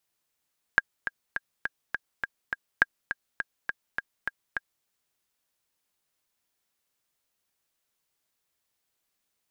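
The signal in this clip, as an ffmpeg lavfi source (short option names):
-f lavfi -i "aevalsrc='pow(10,(-5-10.5*gte(mod(t,7*60/206),60/206))/20)*sin(2*PI*1620*mod(t,60/206))*exp(-6.91*mod(t,60/206)/0.03)':d=4.07:s=44100"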